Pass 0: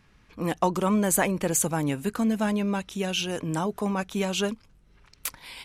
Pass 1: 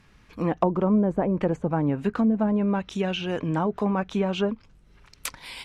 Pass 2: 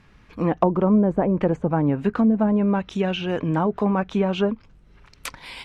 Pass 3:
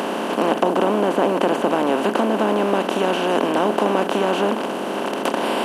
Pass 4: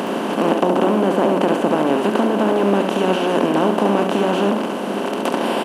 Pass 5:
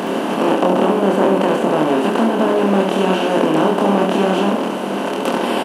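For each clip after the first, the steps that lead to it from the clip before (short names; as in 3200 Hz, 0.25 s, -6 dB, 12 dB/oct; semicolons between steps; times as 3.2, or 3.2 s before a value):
treble ducked by the level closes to 630 Hz, closed at -20 dBFS; gain +3 dB
high shelf 5100 Hz -9.5 dB; gain +3.5 dB
per-bin compression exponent 0.2; HPF 250 Hz 24 dB/oct; gain -3 dB
low shelf 190 Hz +11.5 dB; on a send: echo 70 ms -6.5 dB; on the sum: gain -1 dB
doubler 26 ms -2.5 dB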